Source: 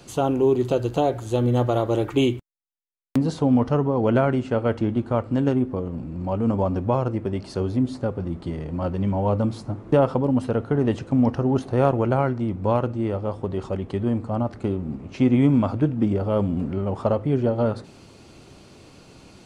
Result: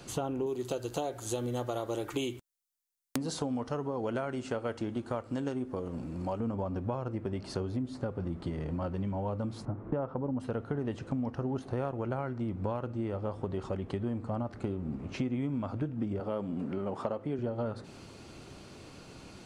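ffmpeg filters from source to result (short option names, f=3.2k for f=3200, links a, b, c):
-filter_complex "[0:a]asettb=1/sr,asplit=3[a][b][c];[a]atrim=end=0.464[d];[b]atrim=start=0.46:end=6.4,asetpts=PTS-STARTPTS,afade=t=in:d=0.004:c=qsin,afade=t=out:st=5.936:d=0.004:c=qsin,bass=f=250:g=-6,treble=f=4k:g=11[e];[c]atrim=start=6.396[f];[d][e]acrossfade=d=0.004:c1=hsin:c2=qsin[g];[g][f]acrossfade=d=0.004:c1=qsin:c2=hsin,asettb=1/sr,asplit=3[h][i][j];[h]atrim=end=9.654[k];[i]atrim=start=9.65:end=10.4,asetpts=PTS-STARTPTS,afade=t=in:d=0.004:c=qsin,afade=t=out:st=0.746:d=0.004:c=qsin,lowpass=1.6k[l];[j]atrim=start=10.396[m];[k][l]acrossfade=d=0.004:c1=hsin:c2=qsin[n];[n][m]acrossfade=d=0.004:c1=qsin:c2=hsin,asettb=1/sr,asplit=3[o][p][q];[o]atrim=end=16.204[r];[p]atrim=start=16.2:end=17.39,asetpts=PTS-STARTPTS,afade=t=in:d=0.004:c=qsin,afade=t=out:st=1.186:d=0.004:c=qsin,highpass=180[s];[q]atrim=start=17.386[t];[r][s]acrossfade=d=0.004:c1=hsin:c2=qsin[u];[u][t]acrossfade=d=0.004:c1=qsin:c2=hsin,acompressor=threshold=-29dB:ratio=6,equalizer=f=1.5k:t=o:w=0.77:g=2.5,volume=-2dB"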